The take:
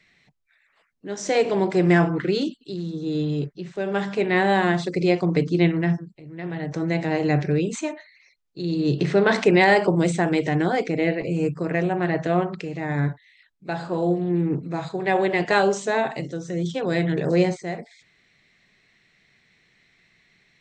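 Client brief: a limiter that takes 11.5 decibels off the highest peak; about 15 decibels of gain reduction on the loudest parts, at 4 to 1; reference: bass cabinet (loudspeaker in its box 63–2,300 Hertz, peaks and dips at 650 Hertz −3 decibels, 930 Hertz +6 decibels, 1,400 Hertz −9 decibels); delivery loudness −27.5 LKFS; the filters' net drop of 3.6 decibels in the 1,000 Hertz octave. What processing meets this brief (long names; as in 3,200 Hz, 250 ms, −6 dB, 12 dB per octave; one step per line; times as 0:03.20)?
parametric band 1,000 Hz −6.5 dB
downward compressor 4 to 1, threshold −32 dBFS
brickwall limiter −30.5 dBFS
loudspeaker in its box 63–2,300 Hz, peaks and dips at 650 Hz −3 dB, 930 Hz +6 dB, 1,400 Hz −9 dB
level +12 dB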